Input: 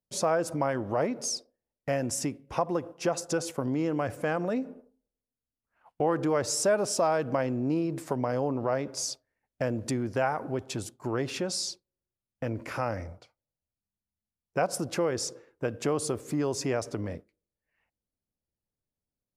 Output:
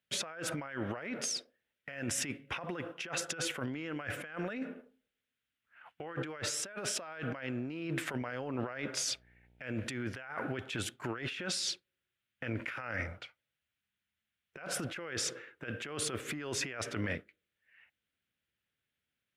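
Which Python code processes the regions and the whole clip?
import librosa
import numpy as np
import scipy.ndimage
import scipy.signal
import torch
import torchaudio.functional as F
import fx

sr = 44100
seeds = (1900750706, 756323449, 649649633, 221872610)

y = fx.peak_eq(x, sr, hz=2300.0, db=6.5, octaves=0.31, at=(9.1, 9.85), fade=0.02)
y = fx.dmg_buzz(y, sr, base_hz=60.0, harmonics=15, level_db=-62.0, tilt_db=-8, odd_only=False, at=(9.1, 9.85), fade=0.02)
y = scipy.signal.sosfilt(scipy.signal.butter(2, 71.0, 'highpass', fs=sr, output='sos'), y)
y = fx.band_shelf(y, sr, hz=2200.0, db=15.5, octaves=1.7)
y = fx.over_compress(y, sr, threshold_db=-33.0, ratio=-1.0)
y = y * 10.0 ** (-6.0 / 20.0)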